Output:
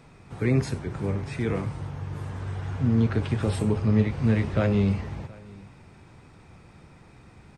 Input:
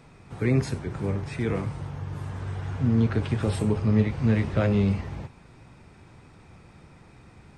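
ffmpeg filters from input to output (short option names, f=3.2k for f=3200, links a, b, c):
-af "aecho=1:1:722:0.0668"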